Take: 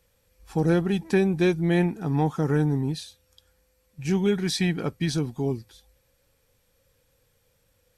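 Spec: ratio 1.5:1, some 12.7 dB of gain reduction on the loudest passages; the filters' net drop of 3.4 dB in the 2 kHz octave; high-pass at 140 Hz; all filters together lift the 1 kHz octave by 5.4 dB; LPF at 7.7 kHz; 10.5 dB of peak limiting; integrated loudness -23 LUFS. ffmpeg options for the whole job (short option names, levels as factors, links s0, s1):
-af "highpass=140,lowpass=7700,equalizer=f=1000:t=o:g=9,equalizer=f=2000:t=o:g=-7.5,acompressor=threshold=0.00224:ratio=1.5,volume=8.91,alimiter=limit=0.211:level=0:latency=1"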